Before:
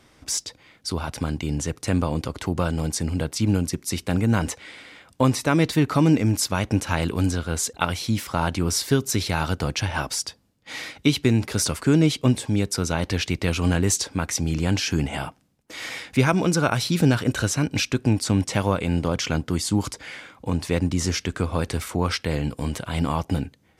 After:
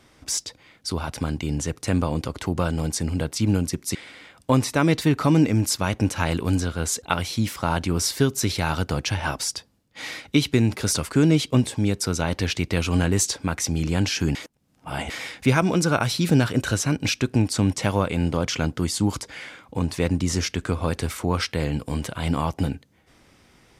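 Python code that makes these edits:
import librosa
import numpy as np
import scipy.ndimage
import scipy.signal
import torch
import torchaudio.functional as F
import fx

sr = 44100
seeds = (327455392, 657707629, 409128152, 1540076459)

y = fx.edit(x, sr, fx.cut(start_s=3.95, length_s=0.71),
    fx.reverse_span(start_s=15.06, length_s=0.75), tone=tone)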